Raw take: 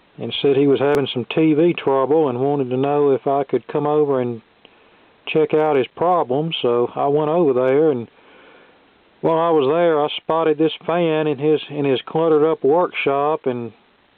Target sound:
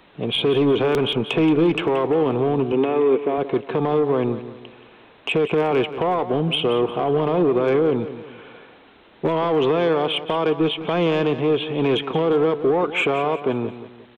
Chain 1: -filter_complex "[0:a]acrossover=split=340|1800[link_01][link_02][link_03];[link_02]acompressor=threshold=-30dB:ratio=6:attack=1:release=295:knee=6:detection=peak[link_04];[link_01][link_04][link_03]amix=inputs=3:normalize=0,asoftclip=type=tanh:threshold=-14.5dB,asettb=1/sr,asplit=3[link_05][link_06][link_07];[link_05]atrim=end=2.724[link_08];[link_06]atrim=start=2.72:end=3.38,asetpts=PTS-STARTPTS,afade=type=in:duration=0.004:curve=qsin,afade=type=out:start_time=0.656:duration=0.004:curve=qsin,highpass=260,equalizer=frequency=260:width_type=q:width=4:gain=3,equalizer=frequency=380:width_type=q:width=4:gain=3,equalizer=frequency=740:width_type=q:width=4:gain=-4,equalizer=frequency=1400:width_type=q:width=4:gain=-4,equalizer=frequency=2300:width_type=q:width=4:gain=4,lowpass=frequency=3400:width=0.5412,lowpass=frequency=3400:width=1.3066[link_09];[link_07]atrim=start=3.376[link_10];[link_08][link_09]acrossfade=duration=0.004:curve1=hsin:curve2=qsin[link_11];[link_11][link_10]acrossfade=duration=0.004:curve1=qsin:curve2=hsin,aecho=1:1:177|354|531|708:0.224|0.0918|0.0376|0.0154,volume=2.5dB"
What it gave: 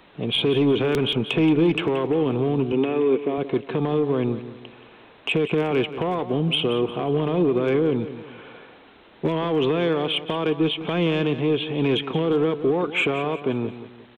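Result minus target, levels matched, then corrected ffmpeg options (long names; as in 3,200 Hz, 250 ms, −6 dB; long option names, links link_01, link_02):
downward compressor: peak gain reduction +8.5 dB
-filter_complex "[0:a]acrossover=split=340|1800[link_01][link_02][link_03];[link_02]acompressor=threshold=-19.5dB:ratio=6:attack=1:release=295:knee=6:detection=peak[link_04];[link_01][link_04][link_03]amix=inputs=3:normalize=0,asoftclip=type=tanh:threshold=-14.5dB,asettb=1/sr,asplit=3[link_05][link_06][link_07];[link_05]atrim=end=2.724[link_08];[link_06]atrim=start=2.72:end=3.38,asetpts=PTS-STARTPTS,afade=type=in:duration=0.004:curve=qsin,afade=type=out:start_time=0.656:duration=0.004:curve=qsin,highpass=260,equalizer=frequency=260:width_type=q:width=4:gain=3,equalizer=frequency=380:width_type=q:width=4:gain=3,equalizer=frequency=740:width_type=q:width=4:gain=-4,equalizer=frequency=1400:width_type=q:width=4:gain=-4,equalizer=frequency=2300:width_type=q:width=4:gain=4,lowpass=frequency=3400:width=0.5412,lowpass=frequency=3400:width=1.3066[link_09];[link_07]atrim=start=3.376[link_10];[link_08][link_09]acrossfade=duration=0.004:curve1=hsin:curve2=qsin[link_11];[link_11][link_10]acrossfade=duration=0.004:curve1=qsin:curve2=hsin,aecho=1:1:177|354|531|708:0.224|0.0918|0.0376|0.0154,volume=2.5dB"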